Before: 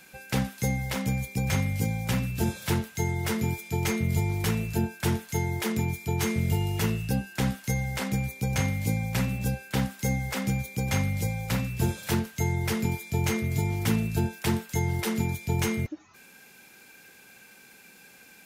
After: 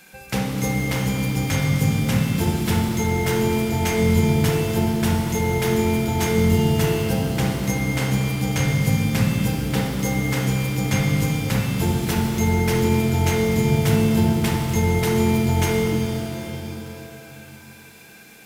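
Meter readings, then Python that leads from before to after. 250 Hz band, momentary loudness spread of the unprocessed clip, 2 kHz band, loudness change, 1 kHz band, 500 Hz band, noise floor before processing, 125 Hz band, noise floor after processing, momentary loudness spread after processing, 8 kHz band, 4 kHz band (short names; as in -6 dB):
+9.0 dB, 3 LU, +6.5 dB, +7.5 dB, +8.0 dB, +11.0 dB, -53 dBFS, +7.0 dB, -44 dBFS, 5 LU, +6.0 dB, +7.5 dB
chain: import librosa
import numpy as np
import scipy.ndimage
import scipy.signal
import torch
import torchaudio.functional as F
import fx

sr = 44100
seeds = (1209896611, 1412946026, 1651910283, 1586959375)

y = fx.echo_filtered(x, sr, ms=68, feedback_pct=78, hz=1500.0, wet_db=-5.0)
y = fx.rev_shimmer(y, sr, seeds[0], rt60_s=3.2, semitones=7, shimmer_db=-8, drr_db=1.5)
y = y * librosa.db_to_amplitude(3.0)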